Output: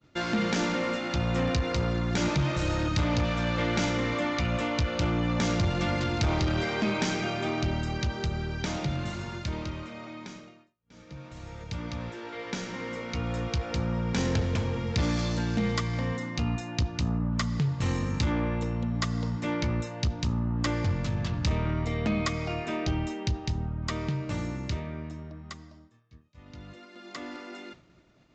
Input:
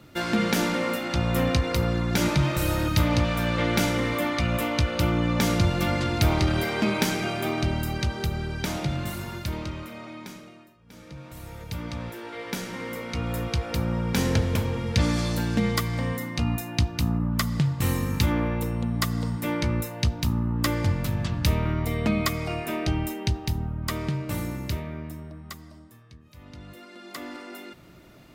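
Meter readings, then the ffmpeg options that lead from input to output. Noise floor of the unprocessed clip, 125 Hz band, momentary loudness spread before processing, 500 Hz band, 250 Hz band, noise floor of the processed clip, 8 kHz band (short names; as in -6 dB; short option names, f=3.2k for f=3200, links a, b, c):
-50 dBFS, -3.0 dB, 16 LU, -3.0 dB, -3.0 dB, -57 dBFS, -5.5 dB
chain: -af "agate=range=-33dB:threshold=-43dB:ratio=3:detection=peak,aresample=16000,asoftclip=type=tanh:threshold=-18dB,aresample=44100,volume=-1.5dB"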